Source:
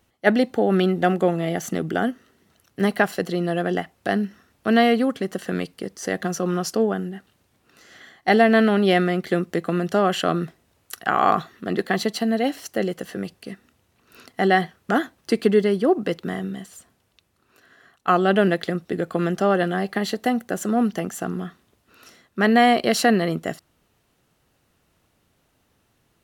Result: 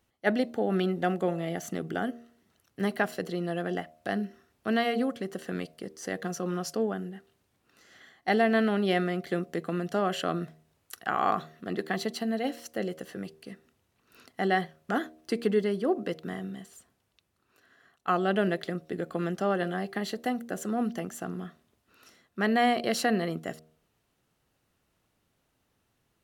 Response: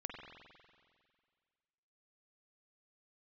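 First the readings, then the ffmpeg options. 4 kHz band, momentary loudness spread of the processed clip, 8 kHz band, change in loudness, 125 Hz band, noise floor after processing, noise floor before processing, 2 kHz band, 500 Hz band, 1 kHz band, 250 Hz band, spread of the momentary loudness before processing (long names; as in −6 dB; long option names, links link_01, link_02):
−8.0 dB, 14 LU, −8.0 dB, −8.5 dB, −8.0 dB, −75 dBFS, −67 dBFS, −8.0 dB, −8.5 dB, −8.0 dB, −8.5 dB, 13 LU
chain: -af "bandreject=frequency=78.35:width_type=h:width=4,bandreject=frequency=156.7:width_type=h:width=4,bandreject=frequency=235.05:width_type=h:width=4,bandreject=frequency=313.4:width_type=h:width=4,bandreject=frequency=391.75:width_type=h:width=4,bandreject=frequency=470.1:width_type=h:width=4,bandreject=frequency=548.45:width_type=h:width=4,bandreject=frequency=626.8:width_type=h:width=4,bandreject=frequency=705.15:width_type=h:width=4,volume=-8dB"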